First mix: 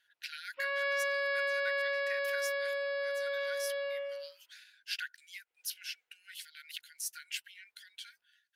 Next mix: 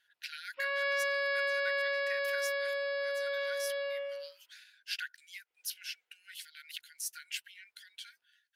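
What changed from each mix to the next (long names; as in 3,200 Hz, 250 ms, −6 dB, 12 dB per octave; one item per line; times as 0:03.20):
background: remove high-frequency loss of the air 82 metres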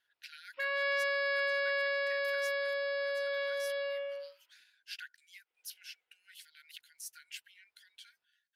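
speech −7.0 dB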